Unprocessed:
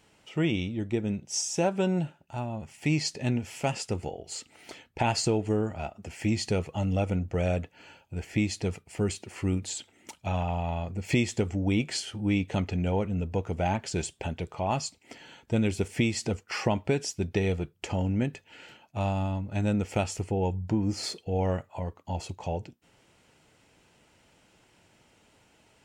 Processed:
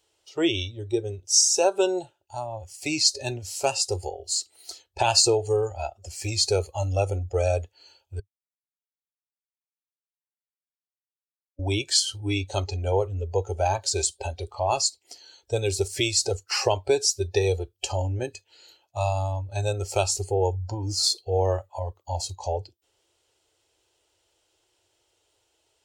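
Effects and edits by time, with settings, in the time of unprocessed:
8.20–11.59 s: mute
whole clip: spectral noise reduction 15 dB; FFT filter 100 Hz 0 dB, 210 Hz -28 dB, 340 Hz +5 dB, 2.3 kHz -2 dB, 3.3 kHz +9 dB; trim +3 dB

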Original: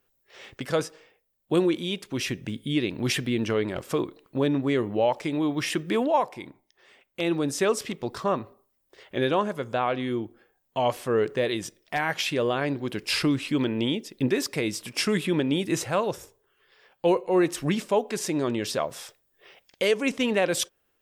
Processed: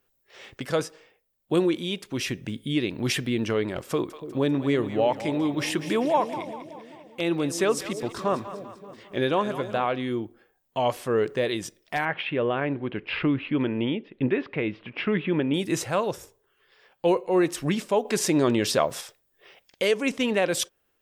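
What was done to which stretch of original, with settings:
3.90–9.86 s: two-band feedback delay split 580 Hz, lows 287 ms, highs 196 ms, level -11.5 dB
12.05–15.54 s: steep low-pass 3 kHz
18.05–19.01 s: gain +5 dB

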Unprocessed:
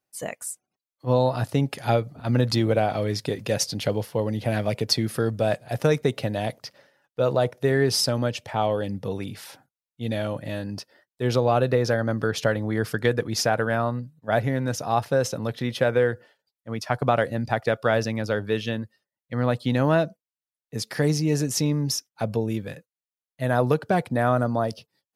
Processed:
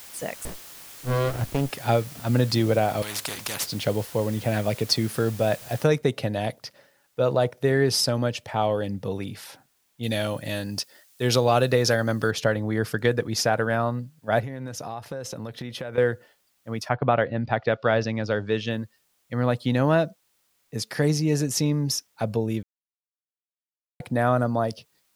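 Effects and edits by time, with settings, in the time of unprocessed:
0.45–1.70 s: sliding maximum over 33 samples
3.02–3.66 s: spectrum-flattening compressor 4:1
5.84 s: noise floor step -44 dB -69 dB
10.03–12.31 s: treble shelf 2.7 kHz +12 dB
14.40–15.98 s: compression, threshold -30 dBFS
16.88–18.69 s: low-pass 2.9 kHz -> 7.6 kHz 24 dB/octave
22.63–24.00 s: mute

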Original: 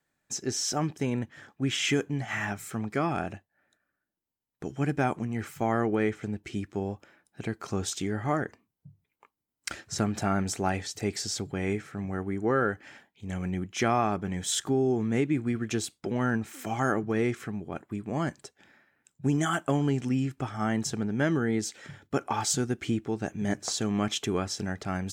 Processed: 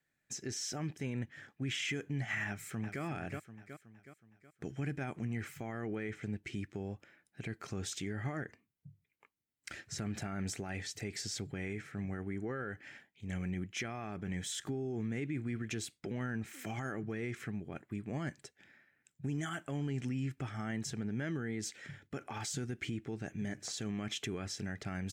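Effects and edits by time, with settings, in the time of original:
2.46–3.02 s: echo throw 370 ms, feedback 50%, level -9.5 dB
whole clip: peak limiter -24.5 dBFS; graphic EQ 125/1000/2000 Hz +4/-6/+7 dB; trim -6.5 dB

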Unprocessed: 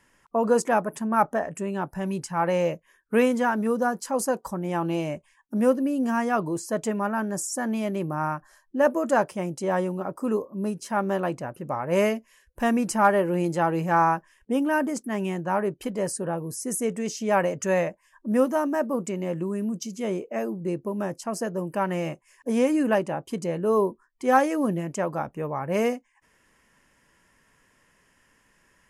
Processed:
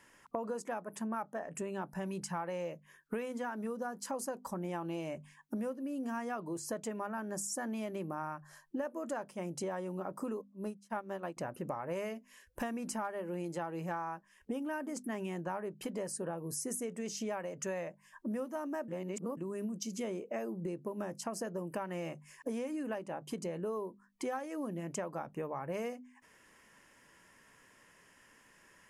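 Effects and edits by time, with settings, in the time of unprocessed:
10.41–11.37 s: upward expansion 2.5:1, over -45 dBFS
18.88–19.37 s: reverse
whole clip: bass shelf 75 Hz -11 dB; hum notches 50/100/150/200/250 Hz; compression 16:1, threshold -36 dBFS; trim +1 dB

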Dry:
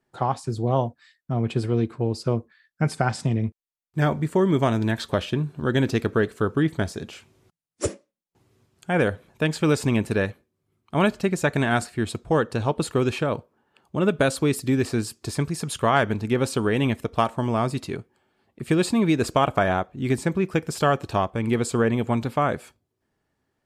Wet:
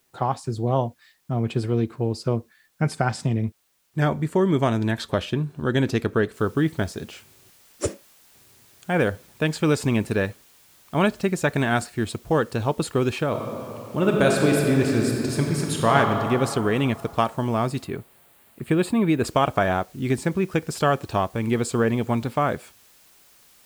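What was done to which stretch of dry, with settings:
6.34 s: noise floor step -68 dB -55 dB
13.28–15.96 s: reverb throw, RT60 3 s, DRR -0.5 dB
17.84–19.25 s: peaking EQ 5.7 kHz -13 dB 0.84 oct

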